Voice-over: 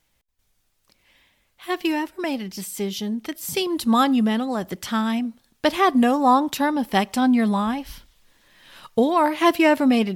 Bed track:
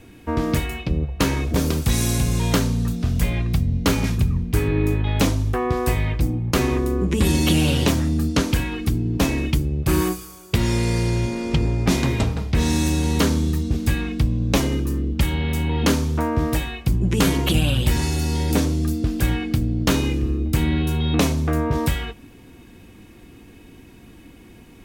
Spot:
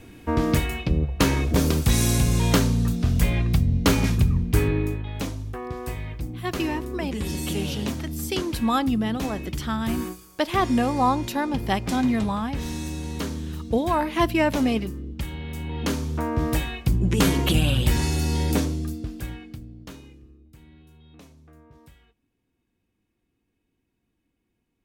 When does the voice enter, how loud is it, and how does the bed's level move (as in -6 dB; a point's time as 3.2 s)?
4.75 s, -4.5 dB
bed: 4.63 s 0 dB
5.08 s -11 dB
15.46 s -11 dB
16.59 s -1.5 dB
18.46 s -1.5 dB
20.45 s -30.5 dB